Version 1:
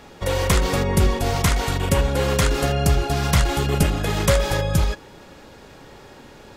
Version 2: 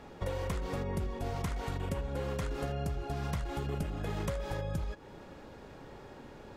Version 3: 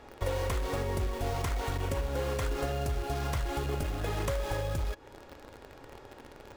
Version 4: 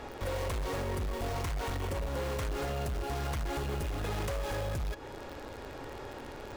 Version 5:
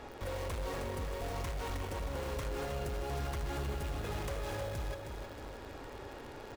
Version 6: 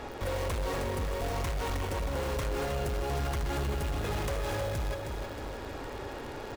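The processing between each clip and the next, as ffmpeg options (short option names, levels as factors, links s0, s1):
-af "highshelf=f=2200:g=-10,acompressor=threshold=0.0447:ratio=10,volume=0.596"
-filter_complex "[0:a]equalizer=f=180:w=2.8:g=-14.5,asplit=2[s0][s1];[s1]acrusher=bits=6:mix=0:aa=0.000001,volume=0.708[s2];[s0][s2]amix=inputs=2:normalize=0"
-af "asoftclip=type=hard:threshold=0.0266,alimiter=level_in=5.96:limit=0.0631:level=0:latency=1:release=12,volume=0.168,volume=2.66"
-af "aecho=1:1:314|628|942|1256|1570|1884:0.447|0.228|0.116|0.0593|0.0302|0.0154,volume=0.596"
-af "asoftclip=type=tanh:threshold=0.0224,volume=2.37"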